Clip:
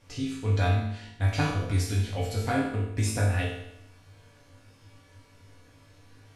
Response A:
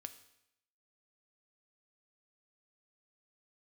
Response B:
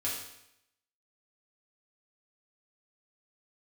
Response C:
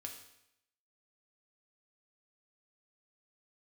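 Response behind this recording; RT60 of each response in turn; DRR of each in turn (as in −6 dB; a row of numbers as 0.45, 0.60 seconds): B; 0.80, 0.80, 0.80 seconds; 9.0, −6.5, 2.0 decibels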